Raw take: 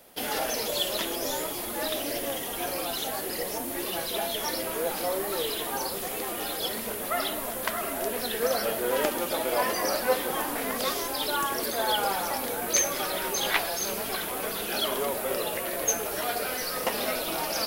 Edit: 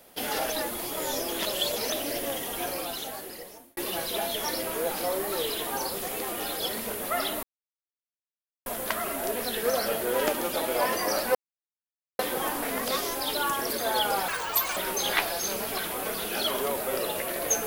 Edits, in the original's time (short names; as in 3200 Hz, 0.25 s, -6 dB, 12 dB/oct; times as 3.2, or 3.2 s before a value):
0.52–1.92 reverse
2.6–3.77 fade out
7.43 insert silence 1.23 s
10.12 insert silence 0.84 s
12.21–13.14 speed 191%